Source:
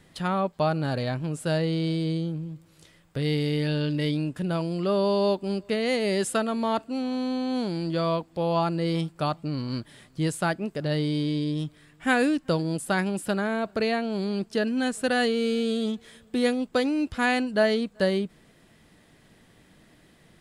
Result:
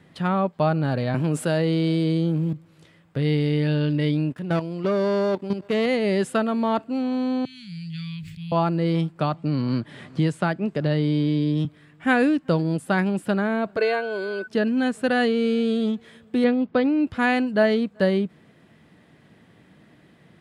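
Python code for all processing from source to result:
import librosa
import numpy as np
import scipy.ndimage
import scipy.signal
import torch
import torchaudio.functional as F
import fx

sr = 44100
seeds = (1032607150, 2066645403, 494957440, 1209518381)

y = fx.chain(x, sr, fx.highpass(hz=180.0, slope=12),
    fx.high_shelf(hz=8500.0, db=10.0),
    fx.env_flatten(amount_pct=70), at=(1.14, 2.53))
y = fx.chain(y, sr, fx.low_shelf(hz=130.0, db=-7.0),
    fx.level_steps(step_db=14),
    fx.leveller(passes=2), at=(4.3, 5.86))
y = fx.chain(y, sr, fx.cheby1_bandstop(low_hz=140.0, high_hz=2200.0, order=3),
    fx.peak_eq(hz=940.0, db=-3.0, octaves=1.7),
    fx.sustainer(db_per_s=31.0), at=(7.45, 8.52))
y = fx.chain(y, sr, fx.lowpass(hz=9100.0, slope=12),
    fx.band_squash(depth_pct=70), at=(9.2, 11.65))
y = fx.highpass(y, sr, hz=300.0, slope=24, at=(13.76, 14.46), fade=0.02)
y = fx.dmg_tone(y, sr, hz=1500.0, level_db=-39.0, at=(13.76, 14.46), fade=0.02)
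y = fx.comb(y, sr, ms=1.9, depth=0.57, at=(13.76, 14.46), fade=0.02)
y = fx.chain(y, sr, fx.cheby1_lowpass(hz=5000.0, order=3),
    fx.bass_treble(bass_db=3, treble_db=-8), at=(16.44, 17.07))
y = scipy.signal.sosfilt(scipy.signal.butter(2, 110.0, 'highpass', fs=sr, output='sos'), y)
y = fx.bass_treble(y, sr, bass_db=4, treble_db=-11)
y = F.gain(torch.from_numpy(y), 2.5).numpy()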